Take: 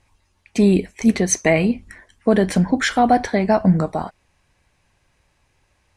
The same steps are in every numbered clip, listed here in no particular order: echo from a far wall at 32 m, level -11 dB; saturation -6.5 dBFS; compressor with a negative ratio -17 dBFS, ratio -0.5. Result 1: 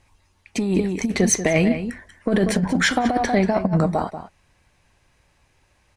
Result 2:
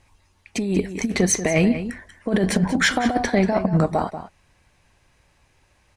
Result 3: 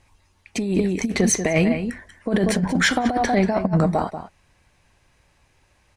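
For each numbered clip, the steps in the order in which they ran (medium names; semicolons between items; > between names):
saturation > echo from a far wall > compressor with a negative ratio; compressor with a negative ratio > saturation > echo from a far wall; echo from a far wall > compressor with a negative ratio > saturation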